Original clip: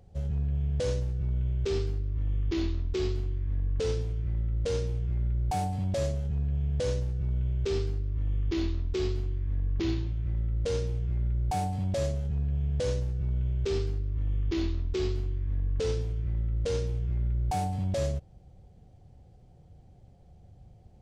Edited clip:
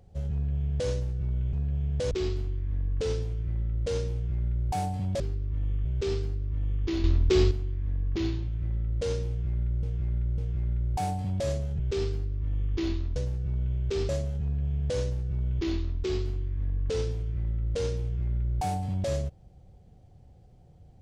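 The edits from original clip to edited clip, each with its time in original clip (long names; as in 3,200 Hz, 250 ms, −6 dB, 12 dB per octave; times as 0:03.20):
0:01.53–0:02.90: swap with 0:12.33–0:12.91
0:05.99–0:07.49: swap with 0:13.84–0:14.49
0:08.68–0:09.15: clip gain +8 dB
0:10.92–0:11.47: repeat, 3 plays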